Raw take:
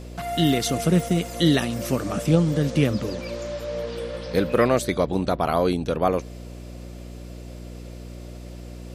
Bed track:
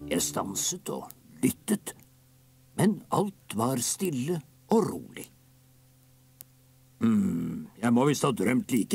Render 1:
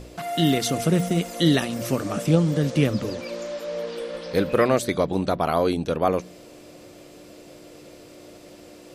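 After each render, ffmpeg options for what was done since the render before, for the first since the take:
-af "bandreject=f=60:t=h:w=4,bandreject=f=120:t=h:w=4,bandreject=f=180:t=h:w=4,bandreject=f=240:t=h:w=4"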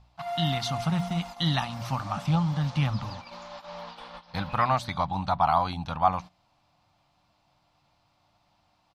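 -af "agate=range=-15dB:threshold=-32dB:ratio=16:detection=peak,firequalizer=gain_entry='entry(120,0);entry(420,-29);entry(810,8);entry(1700,-6);entry(4100,-2);entry(7800,-17)':delay=0.05:min_phase=1"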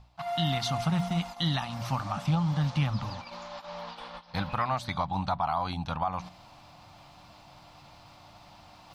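-af "areverse,acompressor=mode=upward:threshold=-38dB:ratio=2.5,areverse,alimiter=limit=-18dB:level=0:latency=1:release=162"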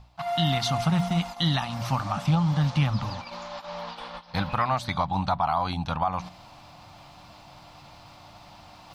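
-af "volume=4dB"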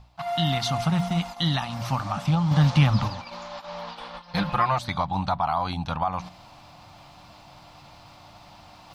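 -filter_complex "[0:a]asettb=1/sr,asplit=3[a][b][c];[a]atrim=end=2.514[d];[b]atrim=start=2.51:end=3.08,asetpts=PTS-STARTPTS,afade=t=in:d=0.004:c=qsin,afade=t=out:st=0.566:d=0.004:c=qsin,acontrast=29[e];[c]atrim=start=3.076[f];[d][e]acrossfade=d=0.004:c1=hsin:c2=qsin[g];[g][f]acrossfade=d=0.004:c1=qsin:c2=hsin,asettb=1/sr,asplit=3[h][i][j];[h]atrim=end=4.204[k];[i]atrim=start=4.2:end=4.79,asetpts=PTS-STARTPTS,afade=t=in:d=0.004:c=qsin,afade=t=out:st=0.586:d=0.004:c=qsin,aecho=1:1:5.7:0.88,atrim=end_sample=26019[l];[j]atrim=start=4.786[m];[k][l]acrossfade=d=0.004:c1=hsin:c2=qsin[n];[n][m]acrossfade=d=0.004:c1=qsin:c2=hsin"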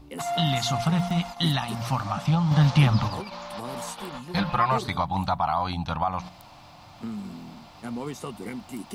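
-filter_complex "[1:a]volume=-10.5dB[a];[0:a][a]amix=inputs=2:normalize=0"

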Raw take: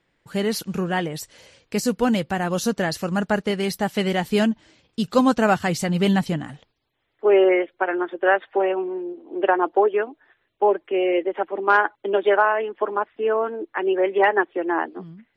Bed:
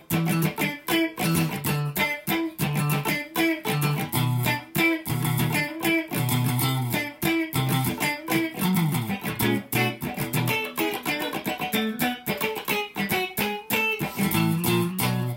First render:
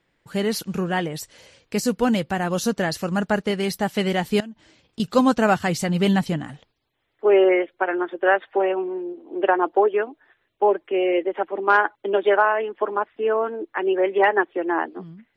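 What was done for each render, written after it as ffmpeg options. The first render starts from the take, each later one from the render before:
-filter_complex "[0:a]asettb=1/sr,asplit=3[a][b][c];[a]atrim=end=4.404[d];[b]atrim=start=4.4:end=5,asetpts=PTS-STARTPTS,afade=t=in:d=0.004:c=qsin,afade=t=out:st=0.596:d=0.004:c=qsin,acompressor=threshold=-36dB:ratio=5:attack=3.2:release=140:knee=1:detection=peak[e];[c]atrim=start=4.996[f];[d][e]acrossfade=d=0.004:c1=hsin:c2=qsin[g];[g][f]acrossfade=d=0.004:c1=qsin:c2=hsin"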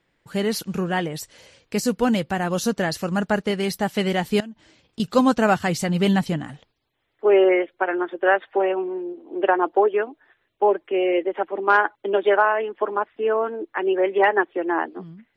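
-af anull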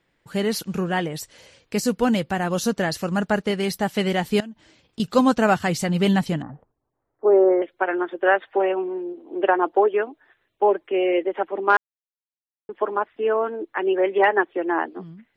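-filter_complex "[0:a]asettb=1/sr,asplit=3[a][b][c];[a]atrim=end=6.424[d];[b]atrim=start=6.42:end=7.62,asetpts=PTS-STARTPTS,afade=t=in:d=0.004:c=qsin,afade=t=out:st=1.196:d=0.004:c=qsin,lowpass=f=1.2k:w=0.5412,lowpass=f=1.2k:w=1.3066[e];[c]atrim=start=7.616[f];[d][e]acrossfade=d=0.004:c1=hsin:c2=qsin[g];[g][f]acrossfade=d=0.004:c1=qsin:c2=hsin,asplit=3[h][i][j];[h]atrim=end=11.77,asetpts=PTS-STARTPTS,afade=t=out:st=11.766:d=0.004:c=hsin[k];[i]atrim=start=11.77:end=12.69,asetpts=PTS-STARTPTS,volume=0[l];[j]atrim=start=12.69,asetpts=PTS-STARTPTS,afade=t=in:d=0.004:c=hsin[m];[k][l][m]concat=n=3:v=0:a=1"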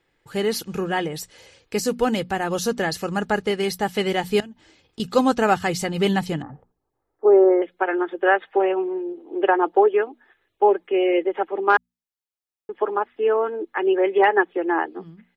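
-af "bandreject=f=60:t=h:w=6,bandreject=f=120:t=h:w=6,bandreject=f=180:t=h:w=6,bandreject=f=240:t=h:w=6,aecho=1:1:2.4:0.32"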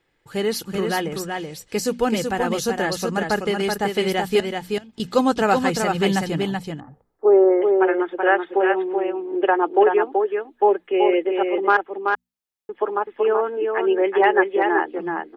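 -af "aecho=1:1:380:0.596"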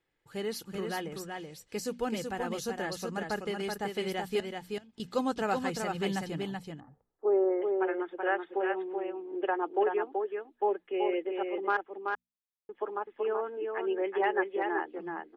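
-af "volume=-12dB"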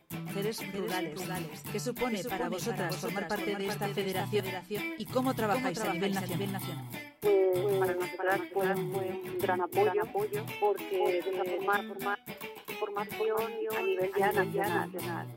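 -filter_complex "[1:a]volume=-15.5dB[a];[0:a][a]amix=inputs=2:normalize=0"

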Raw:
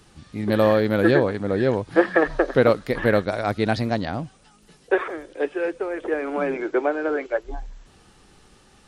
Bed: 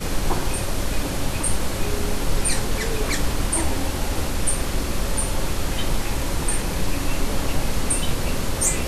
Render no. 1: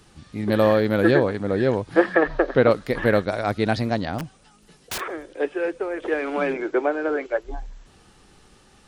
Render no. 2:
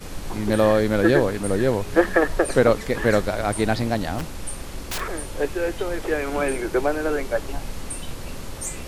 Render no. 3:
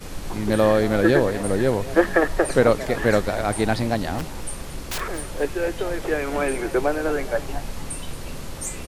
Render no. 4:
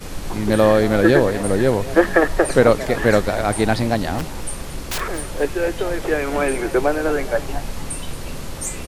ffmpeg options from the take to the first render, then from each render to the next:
-filter_complex "[0:a]asettb=1/sr,asplit=3[a][b][c];[a]atrim=end=2.154[d];[b]atrim=start=2.15:end=2.71,asetpts=PTS-STARTPTS,afade=t=in:d=0.004:c=qsin,afade=t=out:st=0.556:d=0.004:c=qsin,lowpass=4.4k[e];[c]atrim=start=2.706[f];[d][e]acrossfade=d=0.004:c1=hsin:c2=qsin[g];[g][f]acrossfade=d=0.004:c1=qsin:c2=hsin,asplit=3[h][i][j];[h]afade=t=out:st=4.18:d=0.02[k];[i]aeval=exprs='(mod(15*val(0)+1,2)-1)/15':c=same,afade=t=in:st=4.18:d=0.02,afade=t=out:st=4.99:d=0.02[l];[j]afade=t=in:st=4.99:d=0.02[m];[k][l][m]amix=inputs=3:normalize=0,asettb=1/sr,asplit=3[n][o][p];[n]atrim=end=6.024[q];[o]atrim=start=6.02:end=6.53,asetpts=PTS-STARTPTS,afade=t=in:d=0.004:c=qsin,afade=t=out:st=0.506:d=0.004:c=qsin,equalizer=f=3.5k:w=0.79:g=7.5[r];[p]atrim=start=6.526[s];[q][r]acrossfade=d=0.004:c1=hsin:c2=qsin[t];[t][s]acrossfade=d=0.004:c1=qsin:c2=hsin"
-filter_complex "[1:a]volume=-10dB[a];[0:a][a]amix=inputs=2:normalize=0"
-filter_complex "[0:a]asplit=4[a][b][c][d];[b]adelay=225,afreqshift=140,volume=-16.5dB[e];[c]adelay=450,afreqshift=280,volume=-25.4dB[f];[d]adelay=675,afreqshift=420,volume=-34.2dB[g];[a][e][f][g]amix=inputs=4:normalize=0"
-af "volume=3.5dB,alimiter=limit=-1dB:level=0:latency=1"

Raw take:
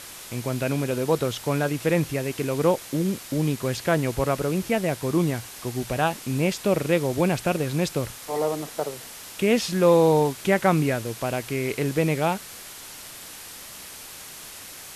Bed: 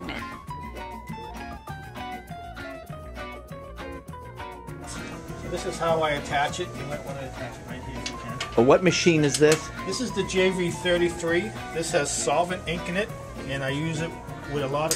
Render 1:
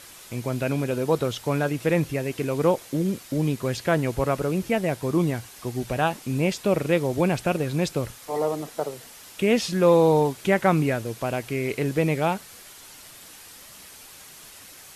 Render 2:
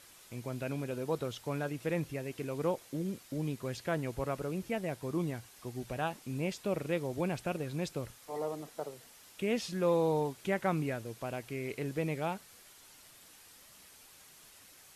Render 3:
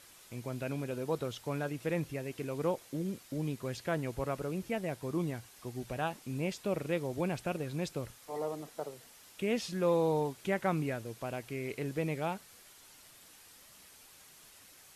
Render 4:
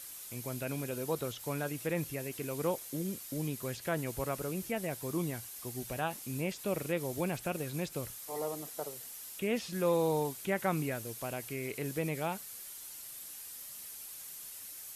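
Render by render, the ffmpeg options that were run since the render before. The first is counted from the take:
-af "afftdn=nr=6:nf=-41"
-af "volume=-11.5dB"
-af anull
-filter_complex "[0:a]acrossover=split=2800[a][b];[b]acompressor=threshold=-54dB:ratio=4:attack=1:release=60[c];[a][c]amix=inputs=2:normalize=0,aemphasis=mode=production:type=75fm"

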